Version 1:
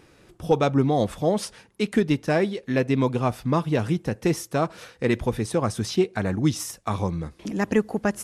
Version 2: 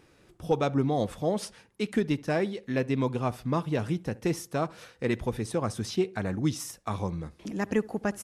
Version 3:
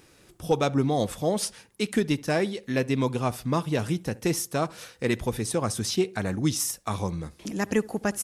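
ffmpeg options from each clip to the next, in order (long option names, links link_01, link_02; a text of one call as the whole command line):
ffmpeg -i in.wav -filter_complex "[0:a]asplit=2[link_01][link_02];[link_02]adelay=69,lowpass=frequency=1600:poles=1,volume=-21dB,asplit=2[link_03][link_04];[link_04]adelay=69,lowpass=frequency=1600:poles=1,volume=0.34,asplit=2[link_05][link_06];[link_06]adelay=69,lowpass=frequency=1600:poles=1,volume=0.34[link_07];[link_01][link_03][link_05][link_07]amix=inputs=4:normalize=0,volume=-5.5dB" out.wav
ffmpeg -i in.wav -af "highshelf=frequency=4400:gain=11,volume=2dB" out.wav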